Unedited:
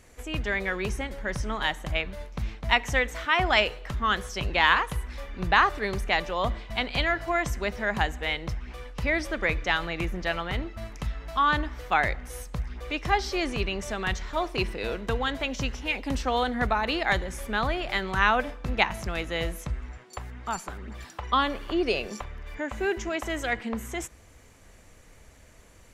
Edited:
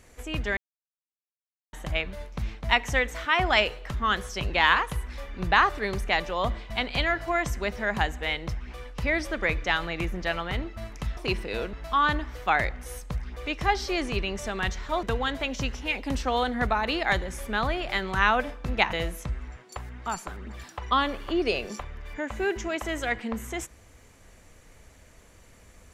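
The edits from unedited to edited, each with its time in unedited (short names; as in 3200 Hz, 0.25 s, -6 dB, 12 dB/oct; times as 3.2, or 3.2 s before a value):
0.57–1.73 mute
14.47–15.03 move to 11.17
18.93–19.34 cut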